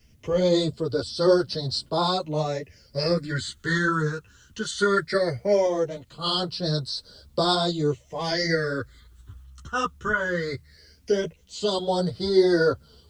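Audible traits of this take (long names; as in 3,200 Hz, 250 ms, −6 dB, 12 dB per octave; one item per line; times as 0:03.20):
phaser sweep stages 8, 0.18 Hz, lowest notch 630–2,200 Hz
a quantiser's noise floor 12 bits, dither triangular
tremolo saw up 0.53 Hz, depth 30%
a shimmering, thickened sound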